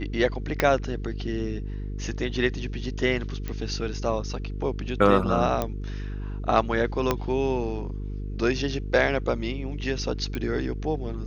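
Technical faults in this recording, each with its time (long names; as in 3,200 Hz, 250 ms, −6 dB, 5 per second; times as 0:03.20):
mains buzz 50 Hz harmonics 9 −32 dBFS
0:00.60: click −7 dBFS
0:03.48: click −18 dBFS
0:05.62: click −12 dBFS
0:07.11: click −8 dBFS
0:10.35: click −18 dBFS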